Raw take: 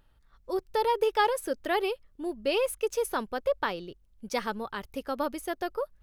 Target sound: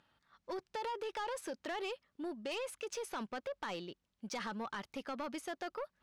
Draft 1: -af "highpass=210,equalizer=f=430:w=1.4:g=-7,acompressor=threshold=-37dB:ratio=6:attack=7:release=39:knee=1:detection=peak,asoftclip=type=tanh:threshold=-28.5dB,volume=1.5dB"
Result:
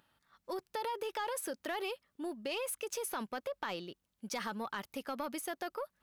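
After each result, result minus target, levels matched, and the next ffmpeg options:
soft clip: distortion -9 dB; 8000 Hz band +4.5 dB
-af "highpass=210,equalizer=f=430:w=1.4:g=-7,acompressor=threshold=-37dB:ratio=6:attack=7:release=39:knee=1:detection=peak,asoftclip=type=tanh:threshold=-35.5dB,volume=1.5dB"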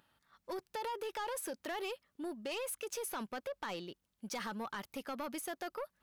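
8000 Hz band +5.0 dB
-af "highpass=210,equalizer=f=430:w=1.4:g=-7,acompressor=threshold=-37dB:ratio=6:attack=7:release=39:knee=1:detection=peak,lowpass=6.1k,asoftclip=type=tanh:threshold=-35.5dB,volume=1.5dB"

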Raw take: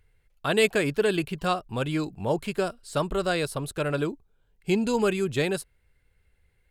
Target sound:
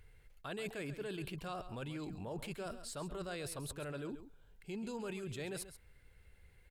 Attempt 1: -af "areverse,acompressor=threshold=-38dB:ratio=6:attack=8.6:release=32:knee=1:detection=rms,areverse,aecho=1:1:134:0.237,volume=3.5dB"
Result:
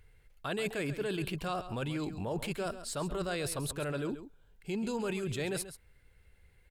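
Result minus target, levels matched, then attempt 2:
compressor: peak gain reduction -8 dB
-af "areverse,acompressor=threshold=-47.5dB:ratio=6:attack=8.6:release=32:knee=1:detection=rms,areverse,aecho=1:1:134:0.237,volume=3.5dB"

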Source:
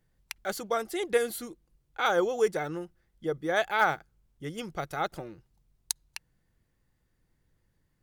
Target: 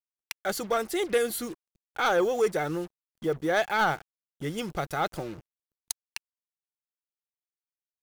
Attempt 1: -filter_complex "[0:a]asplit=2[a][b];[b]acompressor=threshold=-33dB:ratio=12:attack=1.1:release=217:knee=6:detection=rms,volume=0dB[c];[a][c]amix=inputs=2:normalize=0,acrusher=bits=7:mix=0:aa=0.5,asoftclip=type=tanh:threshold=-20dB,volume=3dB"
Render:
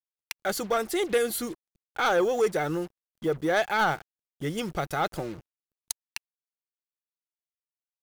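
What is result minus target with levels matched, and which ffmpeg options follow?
compressor: peak gain reduction -7.5 dB
-filter_complex "[0:a]asplit=2[a][b];[b]acompressor=threshold=-41dB:ratio=12:attack=1.1:release=217:knee=6:detection=rms,volume=0dB[c];[a][c]amix=inputs=2:normalize=0,acrusher=bits=7:mix=0:aa=0.5,asoftclip=type=tanh:threshold=-20dB,volume=3dB"

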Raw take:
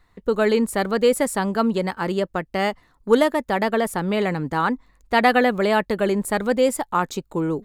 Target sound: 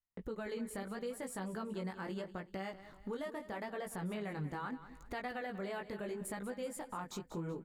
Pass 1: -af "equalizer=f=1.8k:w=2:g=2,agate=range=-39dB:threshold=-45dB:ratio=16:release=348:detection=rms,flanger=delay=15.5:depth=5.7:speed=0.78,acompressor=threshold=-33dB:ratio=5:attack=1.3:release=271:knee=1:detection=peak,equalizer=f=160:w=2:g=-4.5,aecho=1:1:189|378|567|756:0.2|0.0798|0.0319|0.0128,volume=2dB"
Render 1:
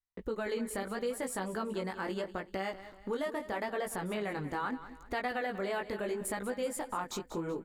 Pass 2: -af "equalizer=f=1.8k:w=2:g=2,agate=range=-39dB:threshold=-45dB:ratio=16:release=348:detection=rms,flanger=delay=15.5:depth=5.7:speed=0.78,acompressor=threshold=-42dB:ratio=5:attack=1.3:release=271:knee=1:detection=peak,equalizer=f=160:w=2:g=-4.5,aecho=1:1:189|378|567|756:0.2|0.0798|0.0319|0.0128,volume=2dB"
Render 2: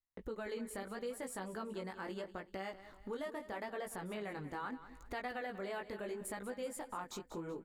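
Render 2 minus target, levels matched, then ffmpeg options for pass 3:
125 Hz band -6.0 dB
-af "equalizer=f=1.8k:w=2:g=2,agate=range=-39dB:threshold=-45dB:ratio=16:release=348:detection=rms,flanger=delay=15.5:depth=5.7:speed=0.78,acompressor=threshold=-42dB:ratio=5:attack=1.3:release=271:knee=1:detection=peak,equalizer=f=160:w=2:g=4.5,aecho=1:1:189|378|567|756:0.2|0.0798|0.0319|0.0128,volume=2dB"

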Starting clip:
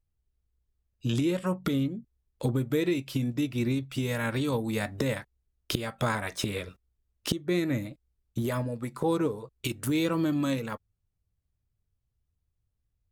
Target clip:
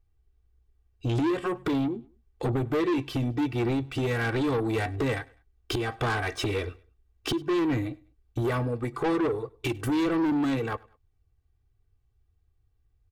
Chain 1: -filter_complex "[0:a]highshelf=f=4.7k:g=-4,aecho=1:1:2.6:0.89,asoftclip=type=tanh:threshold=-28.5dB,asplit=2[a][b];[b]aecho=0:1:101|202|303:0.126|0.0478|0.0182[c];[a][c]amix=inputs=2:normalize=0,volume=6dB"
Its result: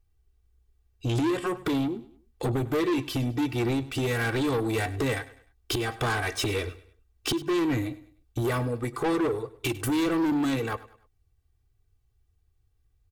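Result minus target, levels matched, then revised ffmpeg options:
8000 Hz band +7.0 dB; echo-to-direct +6.5 dB
-filter_complex "[0:a]highshelf=f=4.7k:g=-15.5,aecho=1:1:2.6:0.89,asoftclip=type=tanh:threshold=-28.5dB,asplit=2[a][b];[b]aecho=0:1:101|202:0.0596|0.0226[c];[a][c]amix=inputs=2:normalize=0,volume=6dB"

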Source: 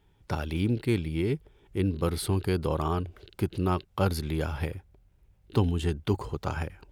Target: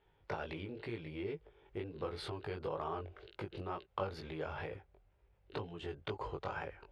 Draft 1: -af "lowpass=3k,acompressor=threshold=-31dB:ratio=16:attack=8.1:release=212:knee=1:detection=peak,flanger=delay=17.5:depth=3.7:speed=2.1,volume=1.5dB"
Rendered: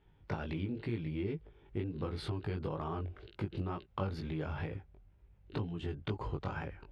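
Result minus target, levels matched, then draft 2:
250 Hz band +3.5 dB
-af "lowpass=3k,acompressor=threshold=-31dB:ratio=16:attack=8.1:release=212:knee=1:detection=peak,lowshelf=f=340:t=q:w=1.5:g=-8.5,flanger=delay=17.5:depth=3.7:speed=2.1,volume=1.5dB"

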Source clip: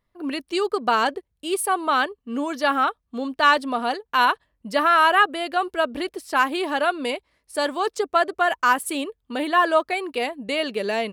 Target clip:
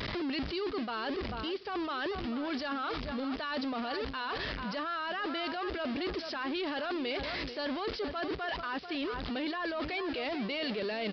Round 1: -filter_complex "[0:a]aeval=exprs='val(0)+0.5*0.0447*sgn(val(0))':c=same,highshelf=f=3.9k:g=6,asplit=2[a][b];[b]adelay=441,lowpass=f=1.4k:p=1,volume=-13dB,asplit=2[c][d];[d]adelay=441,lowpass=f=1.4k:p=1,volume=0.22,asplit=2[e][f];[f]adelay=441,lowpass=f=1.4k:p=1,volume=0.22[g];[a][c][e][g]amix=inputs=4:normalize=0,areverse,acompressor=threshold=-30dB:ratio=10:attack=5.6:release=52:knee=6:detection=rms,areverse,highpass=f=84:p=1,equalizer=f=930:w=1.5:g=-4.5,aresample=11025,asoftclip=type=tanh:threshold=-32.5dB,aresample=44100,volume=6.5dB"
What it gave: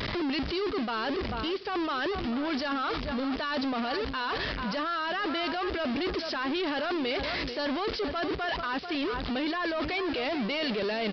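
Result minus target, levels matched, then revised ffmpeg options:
compressor: peak gain reduction -7 dB
-filter_complex "[0:a]aeval=exprs='val(0)+0.5*0.0447*sgn(val(0))':c=same,highshelf=f=3.9k:g=6,asplit=2[a][b];[b]adelay=441,lowpass=f=1.4k:p=1,volume=-13dB,asplit=2[c][d];[d]adelay=441,lowpass=f=1.4k:p=1,volume=0.22,asplit=2[e][f];[f]adelay=441,lowpass=f=1.4k:p=1,volume=0.22[g];[a][c][e][g]amix=inputs=4:normalize=0,areverse,acompressor=threshold=-37.5dB:ratio=10:attack=5.6:release=52:knee=6:detection=rms,areverse,highpass=f=84:p=1,equalizer=f=930:w=1.5:g=-4.5,aresample=11025,asoftclip=type=tanh:threshold=-32.5dB,aresample=44100,volume=6.5dB"

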